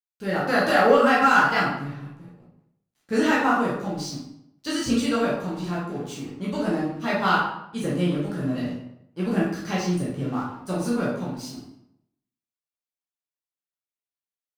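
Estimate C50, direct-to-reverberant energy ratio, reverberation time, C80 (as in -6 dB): 2.0 dB, -7.0 dB, 0.75 s, 6.0 dB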